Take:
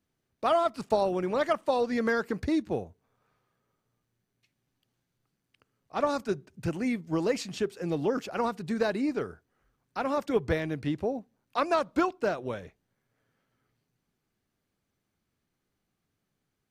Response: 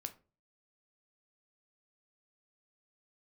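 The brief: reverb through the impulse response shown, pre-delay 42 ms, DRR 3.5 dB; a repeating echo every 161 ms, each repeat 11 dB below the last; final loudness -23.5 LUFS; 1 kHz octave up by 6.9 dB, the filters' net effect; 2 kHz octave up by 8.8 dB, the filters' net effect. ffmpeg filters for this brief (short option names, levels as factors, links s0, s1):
-filter_complex "[0:a]equalizer=f=1000:t=o:g=6.5,equalizer=f=2000:t=o:g=9,aecho=1:1:161|322|483:0.282|0.0789|0.0221,asplit=2[s0][s1];[1:a]atrim=start_sample=2205,adelay=42[s2];[s1][s2]afir=irnorm=-1:irlink=0,volume=0.944[s3];[s0][s3]amix=inputs=2:normalize=0,volume=1.12"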